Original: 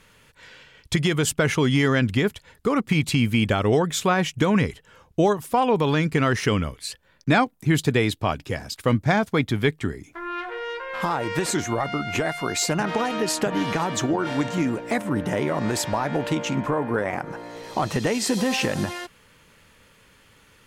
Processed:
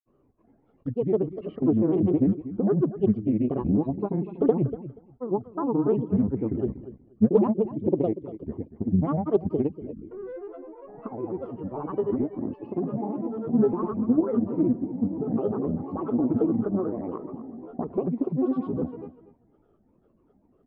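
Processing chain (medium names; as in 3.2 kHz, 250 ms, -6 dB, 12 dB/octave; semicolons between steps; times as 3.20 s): spectral gate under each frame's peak -30 dB strong; cascade formant filter u; granulator, pitch spread up and down by 7 st; feedback delay 240 ms, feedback 16%, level -14 dB; loudspeaker Doppler distortion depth 0.39 ms; trim +7 dB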